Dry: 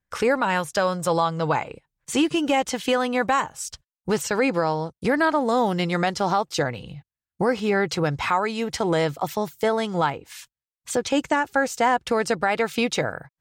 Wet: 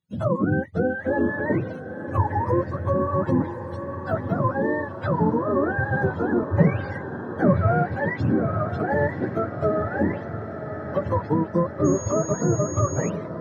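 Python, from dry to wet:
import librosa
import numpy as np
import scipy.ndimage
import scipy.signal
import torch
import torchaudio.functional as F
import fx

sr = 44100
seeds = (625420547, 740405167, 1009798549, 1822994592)

p1 = fx.octave_mirror(x, sr, pivot_hz=530.0)
p2 = fx.low_shelf(p1, sr, hz=320.0, db=12.0, at=(6.42, 7.69))
p3 = p2 + fx.echo_diffused(p2, sr, ms=1023, feedback_pct=64, wet_db=-10.0, dry=0)
y = fx.dmg_tone(p3, sr, hz=6600.0, level_db=-35.0, at=(11.84, 13.08), fade=0.02)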